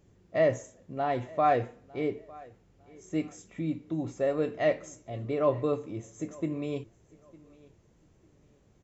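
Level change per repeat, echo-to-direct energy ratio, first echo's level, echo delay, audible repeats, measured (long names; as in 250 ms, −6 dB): −11.5 dB, −22.5 dB, −23.0 dB, 904 ms, 2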